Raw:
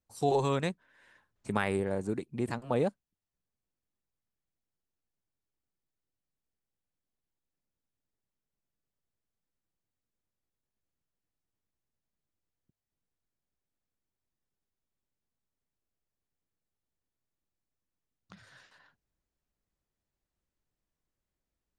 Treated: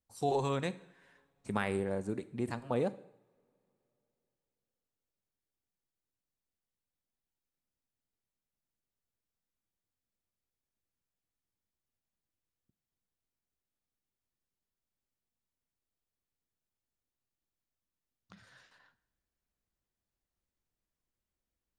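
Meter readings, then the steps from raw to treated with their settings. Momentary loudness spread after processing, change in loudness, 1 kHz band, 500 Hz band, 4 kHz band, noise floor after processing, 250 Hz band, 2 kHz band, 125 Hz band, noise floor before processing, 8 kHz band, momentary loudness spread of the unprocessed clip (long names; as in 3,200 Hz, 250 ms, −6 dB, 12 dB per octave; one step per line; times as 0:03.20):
11 LU, −3.5 dB, −3.0 dB, −3.5 dB, −3.5 dB, below −85 dBFS, −3.0 dB, −3.5 dB, −3.5 dB, below −85 dBFS, −3.0 dB, 8 LU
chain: coupled-rooms reverb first 0.66 s, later 3.5 s, from −27 dB, DRR 13.5 dB
level −3.5 dB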